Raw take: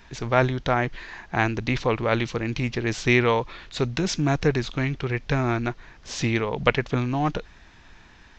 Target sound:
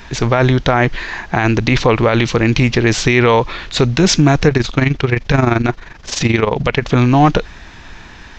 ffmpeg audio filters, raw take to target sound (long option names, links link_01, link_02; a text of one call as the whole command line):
ffmpeg -i in.wav -filter_complex "[0:a]asettb=1/sr,asplit=3[link_01][link_02][link_03];[link_01]atrim=end=4.484[link_04];[link_02]atrim=start=4.48:end=6.85,asetpts=PTS-STARTPTS,afade=type=in:duration=0.004:curve=qsin,afade=type=out:start_time=2.366:duration=0.004:curve=qsin,tremolo=f=23:d=0.71[link_05];[link_03]atrim=start=6.846[link_06];[link_04][link_05]acrossfade=duration=0.004:curve1=hsin:curve2=qsin[link_07];[link_07][link_06]acrossfade=duration=0.004:curve1=qsin:curve2=hsin,alimiter=level_in=15.5dB:limit=-1dB:release=50:level=0:latency=1,volume=-1dB" out.wav